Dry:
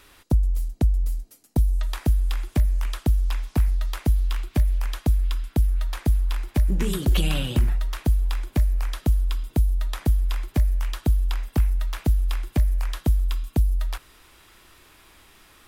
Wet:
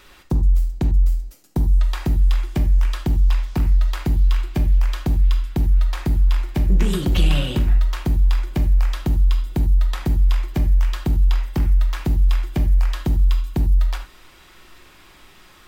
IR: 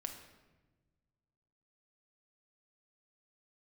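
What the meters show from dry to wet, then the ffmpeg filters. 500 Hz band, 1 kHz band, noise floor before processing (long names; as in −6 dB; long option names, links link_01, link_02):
+3.0 dB, +3.5 dB, −54 dBFS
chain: -filter_complex "[0:a]equalizer=frequency=11000:width=1.5:gain=-8.5,asoftclip=type=tanh:threshold=-15.5dB[link_01];[1:a]atrim=start_sample=2205,atrim=end_sample=4410[link_02];[link_01][link_02]afir=irnorm=-1:irlink=0,volume=7dB"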